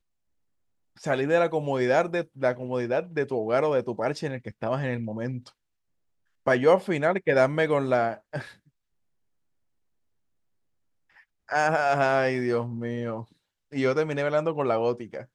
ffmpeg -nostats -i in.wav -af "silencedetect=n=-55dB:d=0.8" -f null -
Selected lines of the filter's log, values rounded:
silence_start: 0.00
silence_end: 0.96 | silence_duration: 0.96
silence_start: 5.52
silence_end: 6.46 | silence_duration: 0.95
silence_start: 8.69
silence_end: 11.10 | silence_duration: 2.41